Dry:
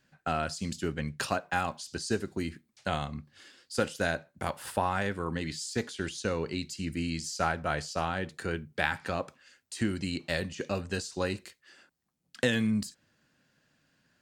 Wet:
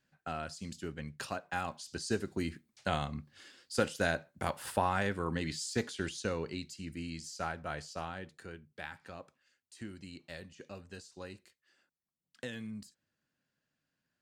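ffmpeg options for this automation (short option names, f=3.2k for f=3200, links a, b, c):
-af "volume=-1.5dB,afade=t=in:st=1.32:d=1.15:silence=0.446684,afade=t=out:st=5.89:d=0.92:silence=0.446684,afade=t=out:st=7.95:d=0.62:silence=0.473151"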